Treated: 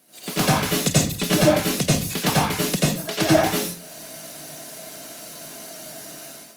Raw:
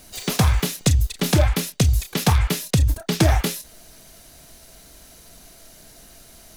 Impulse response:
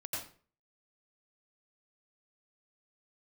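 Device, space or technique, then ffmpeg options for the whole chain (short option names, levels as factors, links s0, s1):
far-field microphone of a smart speaker: -filter_complex "[0:a]asplit=3[s0][s1][s2];[s0]afade=t=out:st=2.75:d=0.02[s3];[s1]highpass=400,afade=t=in:st=2.75:d=0.02,afade=t=out:st=3.2:d=0.02[s4];[s2]afade=t=in:st=3.2:d=0.02[s5];[s3][s4][s5]amix=inputs=3:normalize=0[s6];[1:a]atrim=start_sample=2205[s7];[s6][s7]afir=irnorm=-1:irlink=0,highpass=f=160:w=0.5412,highpass=f=160:w=1.3066,dynaudnorm=f=130:g=5:m=4.47,volume=0.668" -ar 48000 -c:a libopus -b:a 32k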